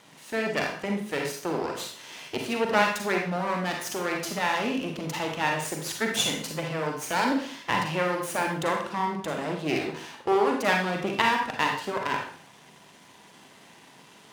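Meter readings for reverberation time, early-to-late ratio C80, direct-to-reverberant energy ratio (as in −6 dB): 0.55 s, 8.5 dB, 1.0 dB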